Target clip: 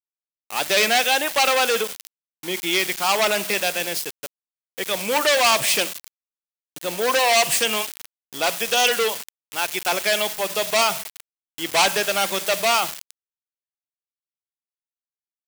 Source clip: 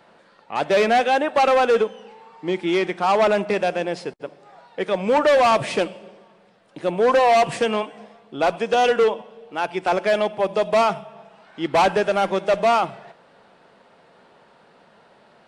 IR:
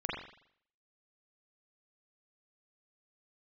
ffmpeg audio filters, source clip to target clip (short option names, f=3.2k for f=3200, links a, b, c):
-filter_complex "[0:a]asplit=2[a][b];[1:a]atrim=start_sample=2205,lowpass=5.4k[c];[b][c]afir=irnorm=-1:irlink=0,volume=-23dB[d];[a][d]amix=inputs=2:normalize=0,aeval=exprs='val(0)*gte(abs(val(0)),0.0211)':c=same,crystalizer=i=9:c=0,adynamicequalizer=threshold=0.0708:dfrequency=1700:dqfactor=0.7:tfrequency=1700:tqfactor=0.7:attack=5:release=100:ratio=0.375:range=2:mode=boostabove:tftype=highshelf,volume=-8dB"